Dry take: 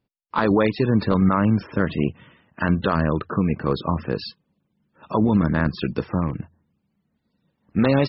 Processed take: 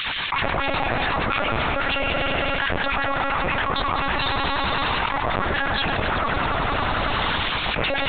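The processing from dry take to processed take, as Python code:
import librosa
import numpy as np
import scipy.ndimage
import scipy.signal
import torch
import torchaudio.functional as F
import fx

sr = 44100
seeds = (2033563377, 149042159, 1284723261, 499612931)

y = fx.lower_of_two(x, sr, delay_ms=3.6)
y = fx.low_shelf(y, sr, hz=140.0, db=-4.5)
y = fx.notch(y, sr, hz=1500.0, q=12.0)
y = fx.quant_dither(y, sr, seeds[0], bits=10, dither='triangular')
y = fx.filter_lfo_highpass(y, sr, shape='sine', hz=8.3, low_hz=640.0, high_hz=2800.0, q=0.95)
y = fx.echo_heads(y, sr, ms=93, heads='first and second', feedback_pct=70, wet_db=-14.5)
y = fx.lpc_vocoder(y, sr, seeds[1], excitation='pitch_kept', order=10)
y = fx.env_flatten(y, sr, amount_pct=100)
y = y * librosa.db_to_amplitude(2.0)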